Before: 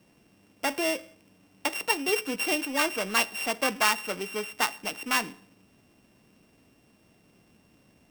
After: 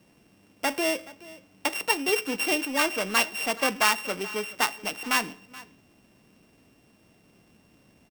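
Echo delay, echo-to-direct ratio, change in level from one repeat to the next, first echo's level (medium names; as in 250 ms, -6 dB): 426 ms, -20.0 dB, no regular repeats, -20.0 dB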